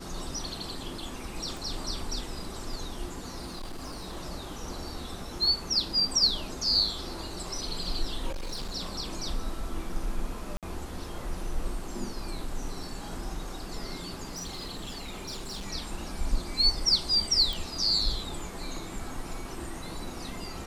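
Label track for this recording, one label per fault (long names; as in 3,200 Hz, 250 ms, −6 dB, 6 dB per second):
1.570000	1.570000	click
3.460000	4.180000	clipping −34 dBFS
8.300000	8.760000	clipping −31 dBFS
10.570000	10.630000	drop-out 57 ms
14.270000	15.660000	clipping −33 dBFS
17.530000	17.530000	click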